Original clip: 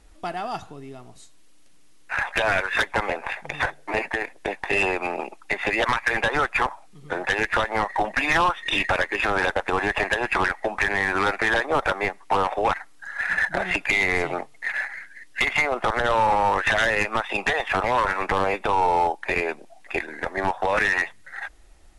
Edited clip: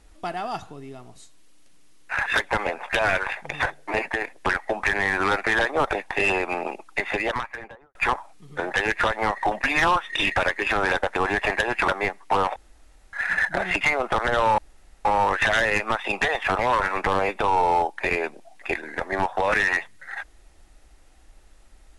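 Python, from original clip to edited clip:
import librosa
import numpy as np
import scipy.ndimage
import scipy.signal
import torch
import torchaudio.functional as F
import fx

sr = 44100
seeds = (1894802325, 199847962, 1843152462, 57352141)

y = fx.studio_fade_out(x, sr, start_s=5.51, length_s=0.97)
y = fx.edit(y, sr, fx.move(start_s=2.26, length_s=0.43, to_s=3.26),
    fx.move(start_s=10.41, length_s=1.47, to_s=4.46),
    fx.room_tone_fill(start_s=12.56, length_s=0.57),
    fx.cut(start_s=13.81, length_s=1.72),
    fx.insert_room_tone(at_s=16.3, length_s=0.47), tone=tone)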